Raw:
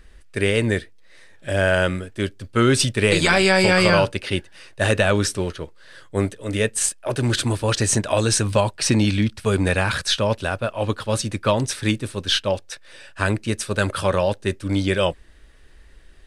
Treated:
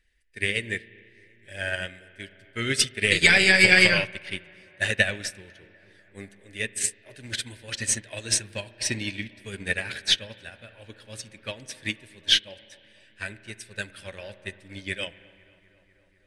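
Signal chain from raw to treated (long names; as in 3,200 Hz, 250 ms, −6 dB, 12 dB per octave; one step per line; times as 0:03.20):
spectral magnitudes quantised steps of 15 dB
high shelf with overshoot 1,500 Hz +7.5 dB, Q 3
on a send: bucket-brigade delay 248 ms, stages 4,096, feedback 77%, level −16.5 dB
on the sum: spring reverb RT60 2.2 s, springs 35 ms, chirp 45 ms, DRR 9.5 dB
expander for the loud parts 2.5 to 1, over −21 dBFS
level −4.5 dB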